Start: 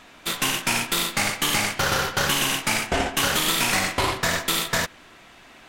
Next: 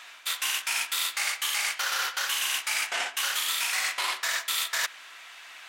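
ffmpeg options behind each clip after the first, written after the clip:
ffmpeg -i in.wav -af "highpass=1300,areverse,acompressor=threshold=-31dB:ratio=6,areverse,volume=5dB" out.wav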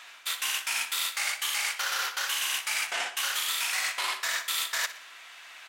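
ffmpeg -i in.wav -af "aecho=1:1:60|120|180|240:0.188|0.081|0.0348|0.015,volume=-1.5dB" out.wav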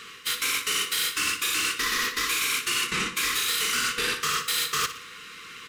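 ffmpeg -i in.wav -af "afftfilt=real='real(if(lt(b,1008),b+24*(1-2*mod(floor(b/24),2)),b),0)':imag='imag(if(lt(b,1008),b+24*(1-2*mod(floor(b/24),2)),b),0)':win_size=2048:overlap=0.75,asoftclip=type=tanh:threshold=-22.5dB,volume=5dB" out.wav

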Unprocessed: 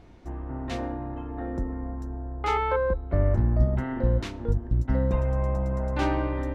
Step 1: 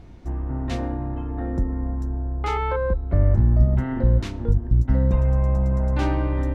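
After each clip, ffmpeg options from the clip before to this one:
ffmpeg -i in.wav -filter_complex "[0:a]asplit=2[link_01][link_02];[link_02]alimiter=limit=-21dB:level=0:latency=1:release=187,volume=0dB[link_03];[link_01][link_03]amix=inputs=2:normalize=0,bass=frequency=250:gain=7,treble=frequency=4000:gain=2,volume=-4.5dB" out.wav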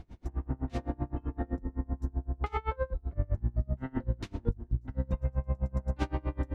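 ffmpeg -i in.wav -af "acompressor=threshold=-23dB:ratio=4,aeval=exprs='val(0)*pow(10,-30*(0.5-0.5*cos(2*PI*7.8*n/s))/20)':channel_layout=same" out.wav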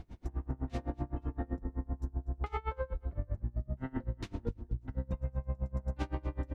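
ffmpeg -i in.wav -af "acompressor=threshold=-31dB:ratio=6,aecho=1:1:243|486:0.119|0.0285" out.wav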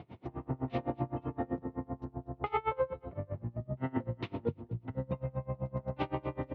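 ffmpeg -i in.wav -af "highpass=frequency=120:width=0.5412,highpass=frequency=120:width=1.3066,equalizer=frequency=200:width_type=q:width=4:gain=-6,equalizer=frequency=290:width_type=q:width=4:gain=-5,equalizer=frequency=1600:width_type=q:width=4:gain=-9,lowpass=frequency=3300:width=0.5412,lowpass=frequency=3300:width=1.3066,volume=7.5dB" out.wav

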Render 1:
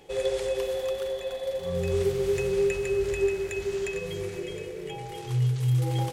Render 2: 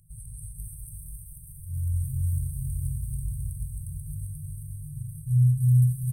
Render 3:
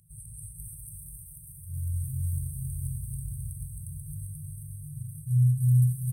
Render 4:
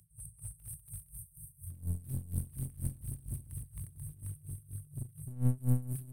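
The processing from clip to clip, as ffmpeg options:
ffmpeg -i in.wav -filter_complex "[0:a]asplit=2[link_01][link_02];[link_02]aecho=0:1:125|267:0.126|0.596[link_03];[link_01][link_03]amix=inputs=2:normalize=0,afftfilt=real='re*(1-between(b*sr/4096,170,8200))':imag='im*(1-between(b*sr/4096,170,8200))':win_size=4096:overlap=0.75,asplit=2[link_04][link_05];[link_05]aecho=0:1:486|972|1458|1944:0.708|0.227|0.0725|0.0232[link_06];[link_04][link_06]amix=inputs=2:normalize=0,volume=5dB" out.wav
ffmpeg -i in.wav -af "highpass=frequency=120:poles=1,volume=1dB" out.wav
ffmpeg -i in.wav -filter_complex "[0:a]acrossover=split=130|3000[link_01][link_02][link_03];[link_02]acompressor=threshold=-30dB:ratio=6[link_04];[link_01][link_04][link_03]amix=inputs=3:normalize=0,aeval=exprs='clip(val(0),-1,0.015)':channel_layout=same,aeval=exprs='val(0)*pow(10,-20*(0.5-0.5*cos(2*PI*4.2*n/s))/20)':channel_layout=same,volume=1dB" out.wav

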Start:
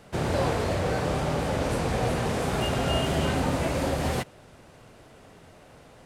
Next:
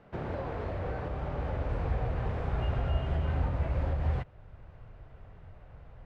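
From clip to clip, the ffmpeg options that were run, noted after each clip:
ffmpeg -i in.wav -af "alimiter=limit=-20dB:level=0:latency=1:release=467,lowpass=2000,asubboost=boost=11.5:cutoff=78,volume=-5.5dB" out.wav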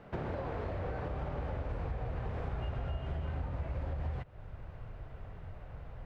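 ffmpeg -i in.wav -af "acompressor=threshold=-38dB:ratio=6,volume=4dB" out.wav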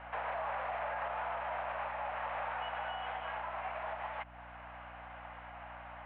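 ffmpeg -i in.wav -af "highpass=frequency=600:width_type=q:width=0.5412,highpass=frequency=600:width_type=q:width=1.307,lowpass=frequency=3000:width_type=q:width=0.5176,lowpass=frequency=3000:width_type=q:width=0.7071,lowpass=frequency=3000:width_type=q:width=1.932,afreqshift=100,alimiter=level_in=15.5dB:limit=-24dB:level=0:latency=1:release=26,volume=-15.5dB,aeval=exprs='val(0)+0.000562*(sin(2*PI*60*n/s)+sin(2*PI*2*60*n/s)/2+sin(2*PI*3*60*n/s)/3+sin(2*PI*4*60*n/s)/4+sin(2*PI*5*60*n/s)/5)':channel_layout=same,volume=10dB" out.wav

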